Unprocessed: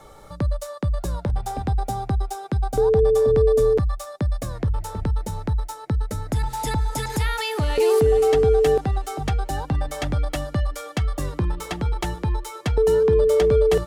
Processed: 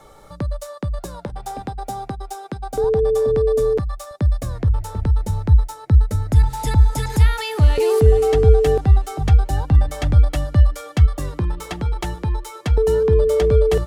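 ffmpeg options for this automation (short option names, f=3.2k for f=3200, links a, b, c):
-af "asetnsamples=n=441:p=0,asendcmd='0.99 equalizer g -14;2.84 equalizer g -3;4.11 equalizer g 7.5;5.2 equalizer g 13.5;11.06 equalizer g 2.5;12.7 equalizer g 8.5',equalizer=f=72:t=o:w=1.5:g=-2"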